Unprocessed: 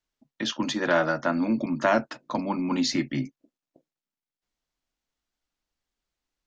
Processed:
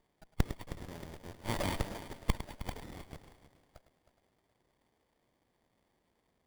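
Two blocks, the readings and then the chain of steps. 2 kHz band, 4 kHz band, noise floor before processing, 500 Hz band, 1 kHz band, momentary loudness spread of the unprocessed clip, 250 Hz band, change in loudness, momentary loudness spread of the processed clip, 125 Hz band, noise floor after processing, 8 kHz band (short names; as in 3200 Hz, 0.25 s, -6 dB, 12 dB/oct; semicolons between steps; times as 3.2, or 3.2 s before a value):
-16.5 dB, -14.0 dB, under -85 dBFS, -17.0 dB, -14.5 dB, 9 LU, -17.5 dB, -13.5 dB, 14 LU, -3.0 dB, -78 dBFS, n/a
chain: nonlinear frequency compression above 3300 Hz 4:1; low-pass opened by the level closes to 1900 Hz, open at -25 dBFS; HPF 1000 Hz 24 dB/oct; dynamic EQ 2400 Hz, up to -4 dB, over -45 dBFS, Q 3.6; level quantiser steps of 21 dB; flipped gate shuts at -47 dBFS, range -34 dB; on a send: multi-head echo 0.105 s, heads first and third, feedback 47%, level -14 dB; on the sum: careless resampling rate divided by 8×, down none, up zero stuff; running maximum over 33 samples; gain +14.5 dB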